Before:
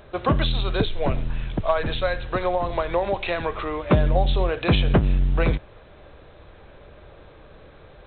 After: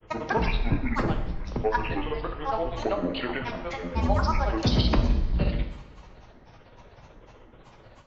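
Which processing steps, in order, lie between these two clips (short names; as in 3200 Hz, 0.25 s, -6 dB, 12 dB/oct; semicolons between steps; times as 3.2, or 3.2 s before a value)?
grains 0.1 s, grains 16/s, pitch spread up and down by 12 st; two-slope reverb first 0.86 s, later 2.9 s, DRR 4.5 dB; gain -3.5 dB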